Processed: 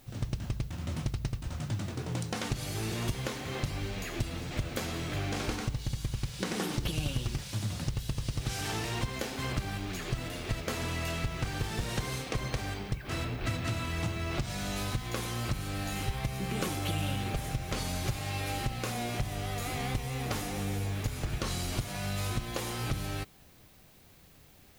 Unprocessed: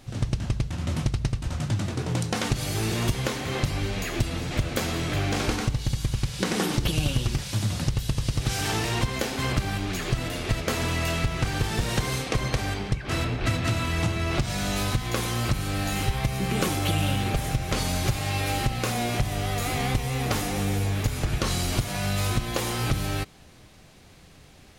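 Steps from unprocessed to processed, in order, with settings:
background noise violet −56 dBFS
level −7.5 dB

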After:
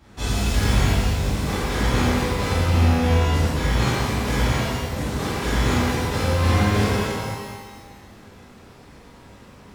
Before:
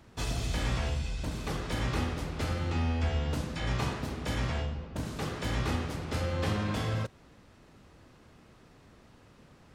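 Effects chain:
reverb with rising layers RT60 1.5 s, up +12 semitones, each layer −8 dB, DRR −10 dB

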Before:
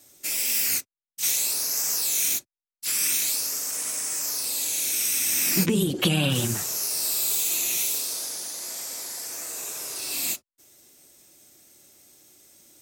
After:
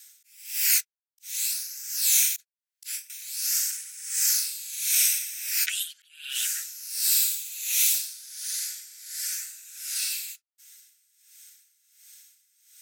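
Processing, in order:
Butterworth high-pass 1,400 Hz 96 dB per octave
volume swells 543 ms
0:02.36–0:03.10: compressor whose output falls as the input rises −38 dBFS, ratio −0.5
0:04.10–0:04.76: flutter between parallel walls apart 6.9 metres, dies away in 0.55 s
tremolo with a sine in dB 1.4 Hz, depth 18 dB
level +5 dB

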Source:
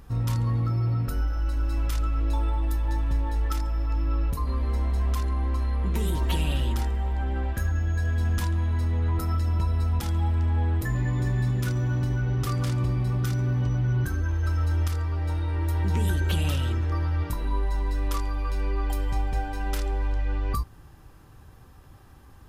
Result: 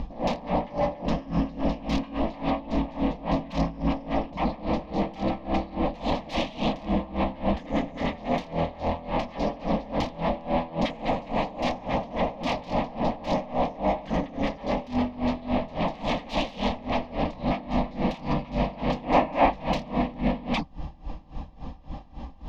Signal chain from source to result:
downsampling to 16,000 Hz
sine wavefolder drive 18 dB, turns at −15 dBFS
high-frequency loss of the air 270 metres
phaser with its sweep stopped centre 390 Hz, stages 6
gain on a spectral selection 0:19.04–0:19.50, 250–2,900 Hz +7 dB
tremolo with a sine in dB 3.6 Hz, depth 20 dB

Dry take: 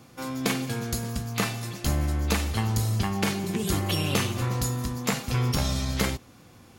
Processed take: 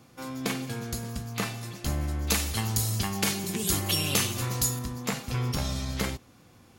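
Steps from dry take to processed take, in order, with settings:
0:02.27–0:04.79: high-shelf EQ 3,500 Hz +12 dB
level −4 dB

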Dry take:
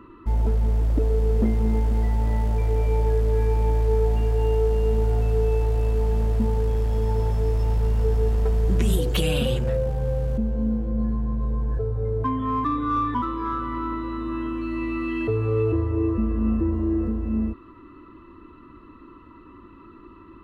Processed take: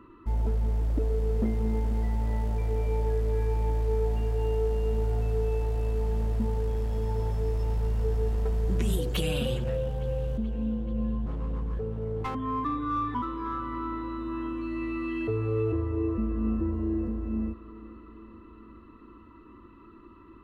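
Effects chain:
0:11.26–0:12.35: lower of the sound and its delayed copy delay 2.2 ms
on a send: delay with a low-pass on its return 431 ms, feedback 68%, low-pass 3,300 Hz, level −18 dB
on the sum: level −5.5 dB

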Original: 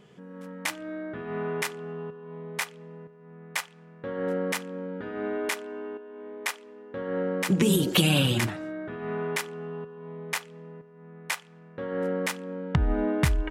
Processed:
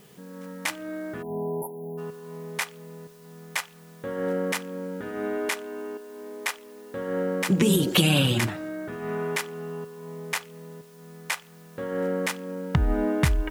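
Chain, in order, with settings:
bit-depth reduction 10 bits, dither triangular
time-frequency box erased 0:01.23–0:01.98, 1,000–9,900 Hz
level +1.5 dB

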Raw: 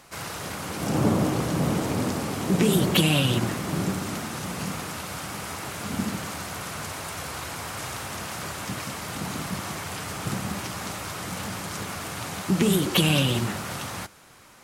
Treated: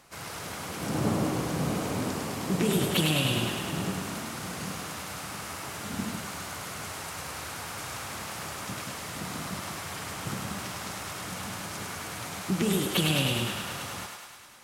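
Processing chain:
feedback echo with a high-pass in the loop 103 ms, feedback 72%, high-pass 490 Hz, level −3.5 dB
level −5.5 dB

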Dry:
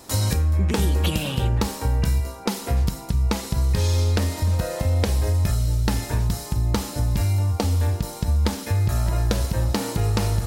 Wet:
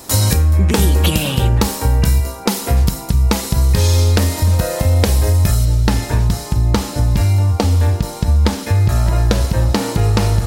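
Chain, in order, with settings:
high-shelf EQ 8,300 Hz +6 dB, from 0:05.65 −5.5 dB
level +7.5 dB

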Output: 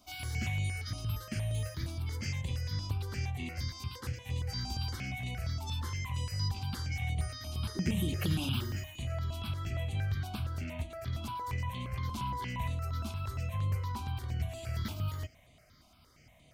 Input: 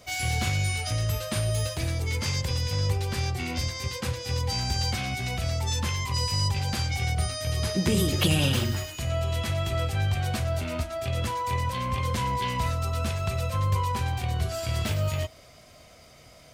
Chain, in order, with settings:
octave-band graphic EQ 250/500/8,000 Hz +3/−7/−6 dB
step-sequenced phaser 8.6 Hz 490–5,200 Hz
level −6 dB

